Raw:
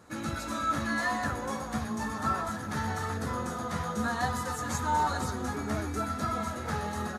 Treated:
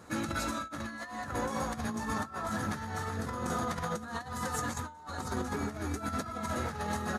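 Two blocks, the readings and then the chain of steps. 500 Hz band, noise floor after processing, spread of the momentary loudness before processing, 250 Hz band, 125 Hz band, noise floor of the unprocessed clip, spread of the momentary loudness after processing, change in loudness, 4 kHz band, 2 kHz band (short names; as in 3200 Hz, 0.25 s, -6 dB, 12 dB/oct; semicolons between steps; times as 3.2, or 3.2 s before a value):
-1.5 dB, -48 dBFS, 5 LU, -2.5 dB, -3.0 dB, -38 dBFS, 5 LU, -4.0 dB, -2.5 dB, -4.5 dB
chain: negative-ratio compressor -35 dBFS, ratio -0.5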